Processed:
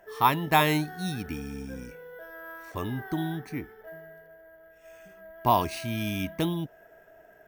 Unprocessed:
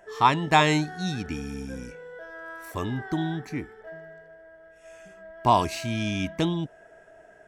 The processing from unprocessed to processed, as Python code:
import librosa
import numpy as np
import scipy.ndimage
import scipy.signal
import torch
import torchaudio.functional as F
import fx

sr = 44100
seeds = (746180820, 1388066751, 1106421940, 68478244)

y = np.repeat(scipy.signal.resample_poly(x, 1, 3), 3)[:len(x)]
y = y * librosa.db_to_amplitude(-2.5)